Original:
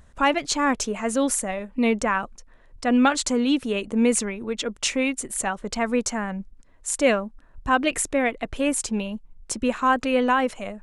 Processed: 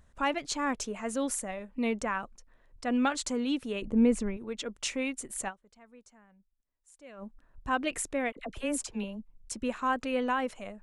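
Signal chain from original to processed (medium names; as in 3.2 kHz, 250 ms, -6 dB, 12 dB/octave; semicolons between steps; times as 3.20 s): 3.82–4.37 s: tilt EQ -3 dB/octave; 5.48–7.23 s: dip -23 dB, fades 0.34 s exponential; 8.32–9.52 s: phase dispersion lows, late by 45 ms, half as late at 860 Hz; trim -9 dB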